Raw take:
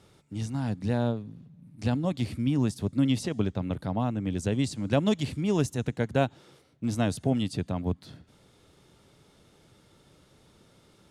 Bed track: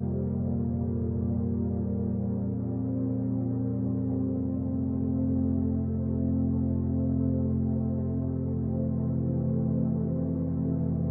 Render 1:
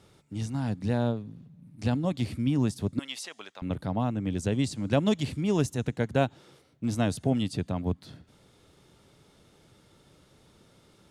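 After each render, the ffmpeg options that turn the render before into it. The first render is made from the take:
-filter_complex "[0:a]asettb=1/sr,asplit=3[s0][s1][s2];[s0]atrim=end=2.994[s3];[s1]atrim=start=2.99:end=3.62,asetpts=PTS-STARTPTS,afade=t=in:d=0.004:c=qsin,afade=t=out:st=0.626:d=0.004:c=qsin,highpass=1100[s4];[s2]atrim=start=3.616[s5];[s3][s4]acrossfade=d=0.004:c1=hsin:c2=qsin[s6];[s6][s5]acrossfade=d=0.004:c1=qsin:c2=hsin"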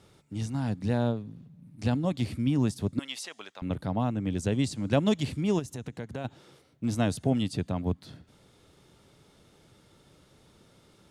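-filter_complex "[0:a]asplit=3[s0][s1][s2];[s0]afade=t=out:st=5.58:d=0.02[s3];[s1]acompressor=threshold=0.0178:ratio=3:attack=3.2:release=140:knee=1:detection=peak,afade=t=in:st=5.58:d=0.02,afade=t=out:st=6.24:d=0.02[s4];[s2]afade=t=in:st=6.24:d=0.02[s5];[s3][s4][s5]amix=inputs=3:normalize=0"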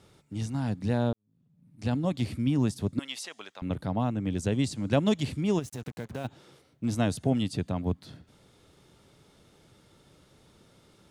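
-filter_complex "[0:a]asplit=3[s0][s1][s2];[s0]afade=t=out:st=5.61:d=0.02[s3];[s1]acrusher=bits=7:mix=0:aa=0.5,afade=t=in:st=5.61:d=0.02,afade=t=out:st=6.26:d=0.02[s4];[s2]afade=t=in:st=6.26:d=0.02[s5];[s3][s4][s5]amix=inputs=3:normalize=0,asplit=2[s6][s7];[s6]atrim=end=1.13,asetpts=PTS-STARTPTS,afade=t=out:st=1.126:d=0.004:c=hsin[s8];[s7]atrim=start=1.13,asetpts=PTS-STARTPTS,afade=t=in:d=0.85:c=qua[s9];[s8][s9]concat=n=2:v=0:a=1"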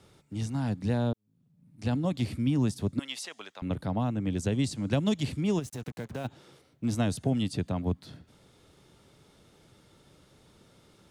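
-filter_complex "[0:a]acrossover=split=240|3000[s0][s1][s2];[s1]acompressor=threshold=0.0398:ratio=6[s3];[s0][s3][s2]amix=inputs=3:normalize=0"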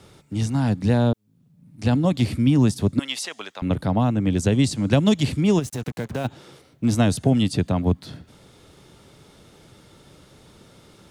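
-af "volume=2.82"

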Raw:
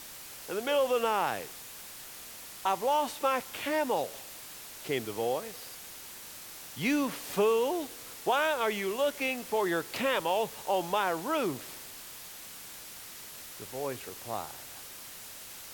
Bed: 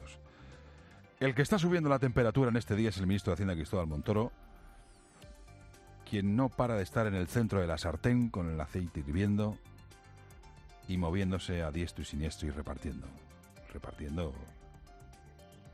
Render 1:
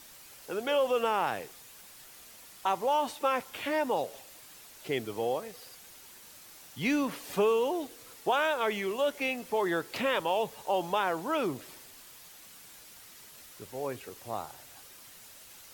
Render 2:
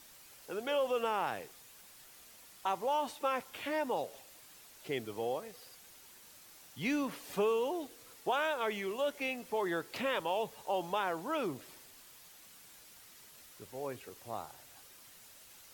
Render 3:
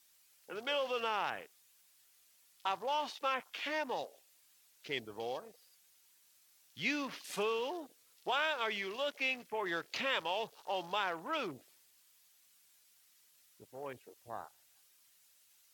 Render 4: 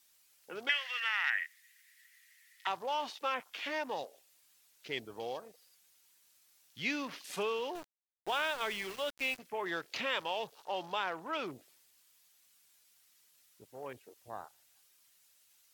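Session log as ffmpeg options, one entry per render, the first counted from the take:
-af "afftdn=nr=7:nf=-46"
-af "volume=0.562"
-af "tiltshelf=f=1300:g=-6.5,afwtdn=0.00355"
-filter_complex "[0:a]asettb=1/sr,asplit=3[s0][s1][s2];[s0]atrim=end=0.694[s3];[s1]atrim=start=0.69:end=2.67,asetpts=PTS-STARTPTS,afade=t=in:d=0.004:c=qsin,afade=t=out:st=1.976:d=0.004:c=qsin,highpass=f=1900:t=q:w=15[s4];[s2]atrim=start=2.666[s5];[s3][s4]acrossfade=d=0.004:c1=hsin:c2=qsin[s6];[s6][s5]acrossfade=d=0.004:c1=qsin:c2=hsin,asettb=1/sr,asplit=3[s7][s8][s9];[s7]atrim=end=7.754[s10];[s8]atrim=start=7.75:end=9.39,asetpts=PTS-STARTPTS,afade=t=in:d=0.004:c=qsin,afade=t=out:st=1.636:d=0.004:c=qsin,aeval=exprs='val(0)*gte(abs(val(0)),0.0075)':c=same[s11];[s9]atrim=start=9.386[s12];[s10][s11]acrossfade=d=0.004:c1=hsin:c2=qsin[s13];[s13][s12]acrossfade=d=0.004:c1=qsin:c2=hsin,asettb=1/sr,asplit=3[s14][s15][s16];[s14]atrim=end=10.644[s17];[s15]atrim=start=10.64:end=11.47,asetpts=PTS-STARTPTS,afade=t=in:d=0.004:c=qsin,afade=t=out:st=0.826:d=0.004:c=qsin,highshelf=f=7800:g=-5[s18];[s16]atrim=start=11.466[s19];[s17][s18]acrossfade=d=0.004:c1=hsin:c2=qsin[s20];[s20][s19]acrossfade=d=0.004:c1=qsin:c2=hsin"

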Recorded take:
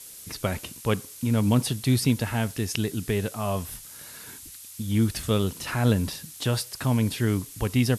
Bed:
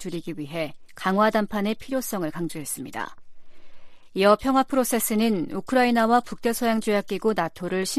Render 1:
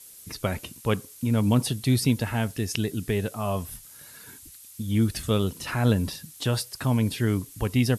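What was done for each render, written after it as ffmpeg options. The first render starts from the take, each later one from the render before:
-af "afftdn=nr=6:nf=-44"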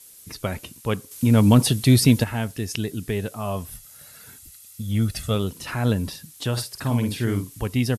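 -filter_complex "[0:a]asettb=1/sr,asplit=3[s0][s1][s2];[s0]atrim=end=1.114[s3];[s1]atrim=start=1.11:end=2.24,asetpts=PTS-STARTPTS,afade=t=in:d=0.004:c=qsin,afade=t=out:st=1.126:d=0.004:c=qsin,acontrast=90[s4];[s2]atrim=start=2.236[s5];[s3][s4]acrossfade=d=0.004:c1=hsin:c2=qsin[s6];[s6][s5]acrossfade=d=0.004:c1=qsin:c2=hsin,asettb=1/sr,asplit=3[s7][s8][s9];[s7]atrim=end=3.734[s10];[s8]atrim=start=3.73:end=5.35,asetpts=PTS-STARTPTS,afade=t=in:d=0.004:c=qsin,afade=t=out:st=1.616:d=0.004:c=qsin,aecho=1:1:1.5:0.49,atrim=end_sample=71442[s11];[s9]atrim=start=5.346[s12];[s10][s11]acrossfade=d=0.004:c1=hsin:c2=qsin[s13];[s13][s12]acrossfade=d=0.004:c1=qsin:c2=hsin,asplit=3[s14][s15][s16];[s14]afade=t=out:st=6.56:d=0.02[s17];[s15]asplit=2[s18][s19];[s19]adelay=50,volume=0.501[s20];[s18][s20]amix=inputs=2:normalize=0,afade=t=in:st=6.56:d=0.02,afade=t=out:st=7.61:d=0.02[s21];[s16]afade=t=in:st=7.61:d=0.02[s22];[s17][s21][s22]amix=inputs=3:normalize=0"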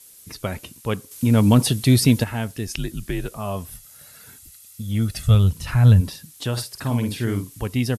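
-filter_complex "[0:a]asettb=1/sr,asplit=3[s0][s1][s2];[s0]atrim=end=2.674[s3];[s1]atrim=start=2.67:end=3.38,asetpts=PTS-STARTPTS,afade=t=in:d=0.004:c=qsin,afade=t=out:st=0.706:d=0.004:c=qsin,afreqshift=-71[s4];[s2]atrim=start=3.376[s5];[s3][s4]acrossfade=d=0.004:c1=hsin:c2=qsin[s6];[s6][s5]acrossfade=d=0.004:c1=qsin:c2=hsin,asplit=3[s7][s8][s9];[s7]afade=t=out:st=5.26:d=0.02[s10];[s8]asubboost=boost=11.5:cutoff=98,afade=t=in:st=5.26:d=0.02,afade=t=out:st=6:d=0.02[s11];[s9]afade=t=in:st=6:d=0.02[s12];[s10][s11][s12]amix=inputs=3:normalize=0"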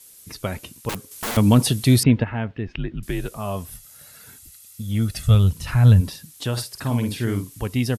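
-filter_complex "[0:a]asettb=1/sr,asplit=3[s0][s1][s2];[s0]atrim=end=0.894[s3];[s1]atrim=start=0.89:end=1.37,asetpts=PTS-STARTPTS,afade=t=in:d=0.004:c=qsin,afade=t=out:st=0.476:d=0.004:c=qsin,aeval=exprs='(mod(13.3*val(0)+1,2)-1)/13.3':c=same[s4];[s2]atrim=start=1.366[s5];[s3][s4]acrossfade=d=0.004:c1=hsin:c2=qsin[s6];[s6][s5]acrossfade=d=0.004:c1=qsin:c2=hsin,asettb=1/sr,asplit=3[s7][s8][s9];[s7]atrim=end=2.034[s10];[s8]atrim=start=2.03:end=3.03,asetpts=PTS-STARTPTS,afade=t=in:d=0.004:c=qsin,afade=t=out:st=0.996:d=0.004:c=qsin,lowpass=f=2700:w=0.5412,lowpass=f=2700:w=1.3066[s11];[s9]atrim=start=3.026[s12];[s10][s11]acrossfade=d=0.004:c1=hsin:c2=qsin[s13];[s13][s12]acrossfade=d=0.004:c1=qsin:c2=hsin"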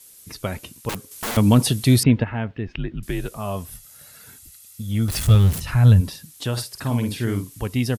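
-filter_complex "[0:a]asettb=1/sr,asplit=3[s0][s1][s2];[s0]atrim=end=5.084[s3];[s1]atrim=start=5.08:end=5.6,asetpts=PTS-STARTPTS,afade=t=in:d=0.004:c=qsin,afade=t=out:st=0.516:d=0.004:c=qsin,aeval=exprs='val(0)+0.5*0.0631*sgn(val(0))':c=same[s4];[s2]atrim=start=5.596[s5];[s3][s4]acrossfade=d=0.004:c1=hsin:c2=qsin[s6];[s6][s5]acrossfade=d=0.004:c1=qsin:c2=hsin"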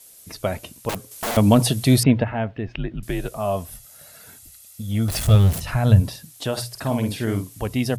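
-af "equalizer=f=650:t=o:w=0.58:g=8.5,bandreject=f=60:t=h:w=6,bandreject=f=120:t=h:w=6"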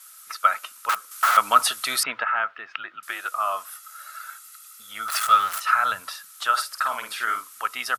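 -af "highpass=f=1300:t=q:w=13"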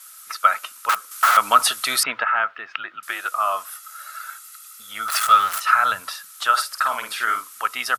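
-af "volume=1.5,alimiter=limit=0.708:level=0:latency=1"

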